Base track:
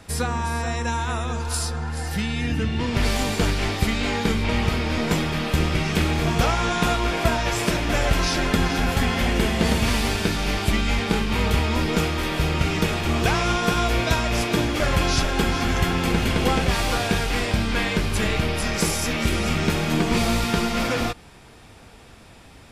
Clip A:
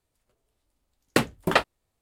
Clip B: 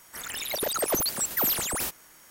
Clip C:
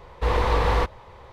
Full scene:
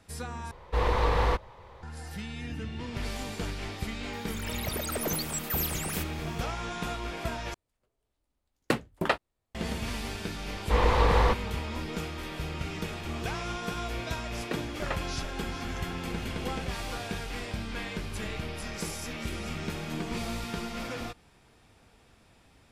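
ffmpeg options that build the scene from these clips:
-filter_complex "[3:a]asplit=2[a][b];[1:a]asplit=2[c][d];[0:a]volume=-13dB[e];[c]highshelf=f=5k:g=-6.5[f];[d]acrossover=split=3300[g][h];[h]acompressor=threshold=-40dB:ratio=4:attack=1:release=60[i];[g][i]amix=inputs=2:normalize=0[j];[e]asplit=3[k][l][m];[k]atrim=end=0.514[n];[a]atrim=end=1.32,asetpts=PTS-STARTPTS,volume=-4dB[o];[l]atrim=start=1.826:end=7.544[p];[f]atrim=end=2.01,asetpts=PTS-STARTPTS,volume=-5dB[q];[m]atrim=start=9.546[r];[2:a]atrim=end=2.3,asetpts=PTS-STARTPTS,volume=-6.5dB,afade=t=in:d=0.004:c=hsin,afade=t=out:st=2.296:d=0.004:c=hsin,adelay=182133S[s];[b]atrim=end=1.32,asetpts=PTS-STARTPTS,volume=-1.5dB,afade=t=in:d=0.004:c=hsin,afade=t=out:st=1.316:d=0.004:c=hsin,adelay=10480[t];[j]atrim=end=2.01,asetpts=PTS-STARTPTS,volume=-14dB,afade=t=in:d=0.004:c=hsin,afade=t=out:st=2.006:d=0.004:c=hsin,adelay=13350[u];[n][o]acrossfade=d=0.004:c1=hsin:c2=hsin[v];[v][p]acrossfade=d=0.004:c1=hsin:c2=hsin[w];[w][q]acrossfade=d=0.004:c1=hsin:c2=hsin[x];[x][r]acrossfade=d=0.004:c1=hsin:c2=hsin[y];[y][s][t][u]amix=inputs=4:normalize=0"

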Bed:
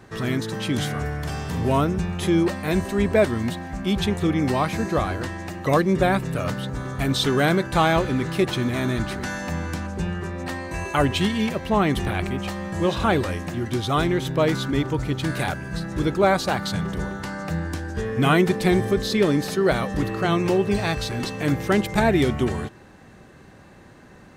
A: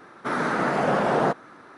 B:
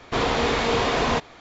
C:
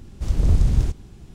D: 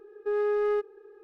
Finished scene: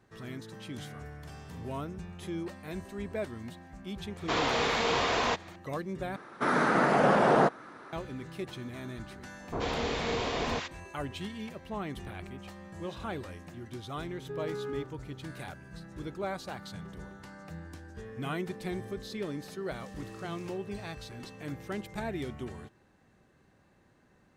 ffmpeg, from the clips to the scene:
-filter_complex "[2:a]asplit=2[a][b];[0:a]volume=-17dB[c];[a]lowshelf=f=310:g=-10.5[d];[b]acrossover=split=1200[e][f];[f]adelay=80[g];[e][g]amix=inputs=2:normalize=0[h];[3:a]highpass=1.5k[i];[c]asplit=2[j][k];[j]atrim=end=6.164[l];[1:a]atrim=end=1.77,asetpts=PTS-STARTPTS,volume=-1dB[m];[k]atrim=start=7.926[n];[d]atrim=end=1.4,asetpts=PTS-STARTPTS,volume=-4dB,afade=t=in:d=0.004:c=hsin,afade=t=out:st=1.396:d=0.004:c=hsin,adelay=4160[o];[h]atrim=end=1.4,asetpts=PTS-STARTPTS,volume=-9dB,afade=t=in:d=0.004:c=hsin,afade=t=out:st=1.396:d=0.004:c=hsin,adelay=9400[p];[4:a]atrim=end=1.23,asetpts=PTS-STARTPTS,volume=-11.5dB,afade=t=in:d=0.004:c=hsin,afade=t=out:st=1.226:d=0.004:c=hsin,adelay=14030[q];[i]atrim=end=1.34,asetpts=PTS-STARTPTS,volume=-15dB,afade=t=in:d=0.004:c=hsin,afade=t=out:st=1.336:d=0.004:c=hsin,adelay=19580[r];[l][m]acrossfade=d=0.004:c1=hsin:c2=hsin[s];[s][n]acrossfade=d=0.004:c1=hsin:c2=hsin[t];[t][o][p][q][r]amix=inputs=5:normalize=0"

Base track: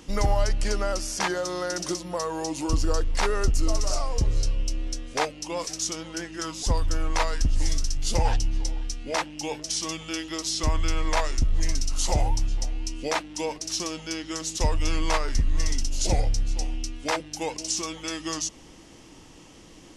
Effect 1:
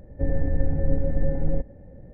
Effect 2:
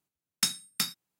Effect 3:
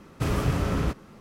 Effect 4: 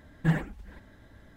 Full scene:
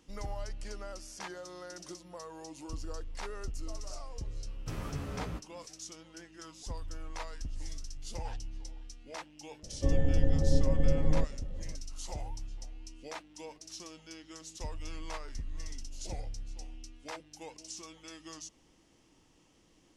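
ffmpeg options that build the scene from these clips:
-filter_complex "[0:a]volume=-16.5dB[a];[3:a]asplit=2[b][c];[c]adelay=11.7,afreqshift=-1.7[d];[b][d]amix=inputs=2:normalize=1,atrim=end=1.2,asetpts=PTS-STARTPTS,volume=-10.5dB,afade=t=in:d=0.004:c=hsin,afade=t=out:st=1.196:d=0.004:c=hsin,adelay=4460[e];[1:a]atrim=end=2.13,asetpts=PTS-STARTPTS,volume=-3dB,afade=t=in:d=0.004:c=hsin,afade=t=out:st=2.126:d=0.004:c=hsin,adelay=9630[f];[a][e][f]amix=inputs=3:normalize=0"

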